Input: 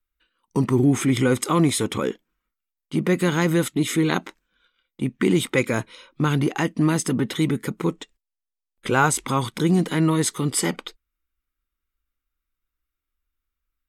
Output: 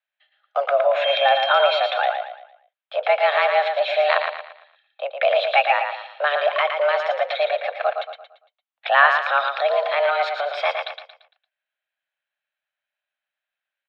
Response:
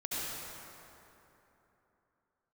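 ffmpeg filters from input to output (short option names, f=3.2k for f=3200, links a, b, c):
-filter_complex "[0:a]asettb=1/sr,asplit=3[a][b][c];[a]atrim=end=1.044[d];[b]atrim=start=1.04:end=1.79,asetpts=PTS-STARTPTS,afade=t=in:d=0.004:c=qsin,afade=t=out:st=0.746:d=0.004:c=qsin,aeval=exprs='val(0)+0.0447*sin(2*PI*2900*n/s)':c=same[e];[c]atrim=start=1.786[f];[d][e]acrossfade=d=0.004:c1=hsin:c2=qsin[g];[g][f]acrossfade=d=0.004:c1=qsin:c2=hsin,highpass=f=320:t=q:w=0.5412,highpass=f=320:t=q:w=1.307,lowpass=f=3.5k:t=q:w=0.5176,lowpass=f=3.5k:t=q:w=0.7071,lowpass=f=3.5k:t=q:w=1.932,afreqshift=290,aecho=1:1:114|228|342|456|570:0.501|0.19|0.0724|0.0275|0.0105,volume=4.5dB"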